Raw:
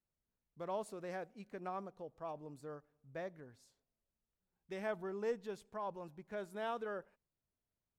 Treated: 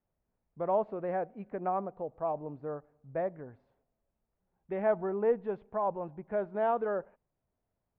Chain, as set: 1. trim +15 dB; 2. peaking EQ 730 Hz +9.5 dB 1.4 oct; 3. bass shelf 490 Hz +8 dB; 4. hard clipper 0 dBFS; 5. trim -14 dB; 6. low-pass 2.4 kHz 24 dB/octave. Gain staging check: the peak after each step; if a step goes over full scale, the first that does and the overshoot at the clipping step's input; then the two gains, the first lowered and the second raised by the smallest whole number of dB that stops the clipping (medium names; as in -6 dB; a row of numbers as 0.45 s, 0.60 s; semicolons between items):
-13.0 dBFS, -6.0 dBFS, -3.5 dBFS, -3.5 dBFS, -17.5 dBFS, -17.5 dBFS; nothing clips